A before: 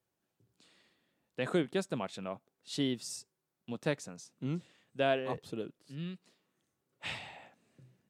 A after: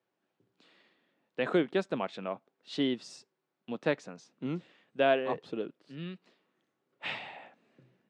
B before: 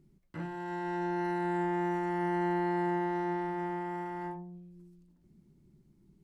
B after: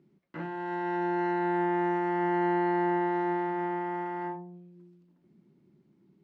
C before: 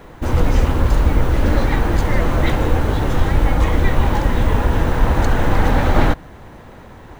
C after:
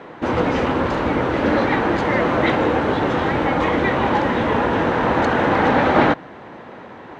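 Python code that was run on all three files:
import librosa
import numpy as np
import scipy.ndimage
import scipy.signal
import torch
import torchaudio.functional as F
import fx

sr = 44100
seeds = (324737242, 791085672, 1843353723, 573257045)

y = fx.bandpass_edges(x, sr, low_hz=220.0, high_hz=3300.0)
y = y * librosa.db_to_amplitude(4.5)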